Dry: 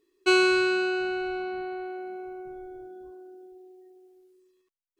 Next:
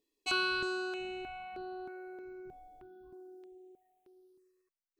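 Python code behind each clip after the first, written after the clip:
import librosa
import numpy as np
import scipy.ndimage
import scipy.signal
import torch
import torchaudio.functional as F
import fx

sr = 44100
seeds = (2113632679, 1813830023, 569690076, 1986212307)

y = fx.dynamic_eq(x, sr, hz=420.0, q=1.3, threshold_db=-38.0, ratio=4.0, max_db=-7)
y = fx.phaser_held(y, sr, hz=3.2, low_hz=370.0, high_hz=7400.0)
y = F.gain(torch.from_numpy(y), -4.5).numpy()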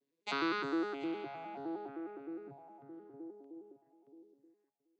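y = fx.vocoder_arp(x, sr, chord='minor triad', root=49, every_ms=103)
y = y + 10.0 ** (-20.0 / 20.0) * np.pad(y, (int(729 * sr / 1000.0), 0))[:len(y)]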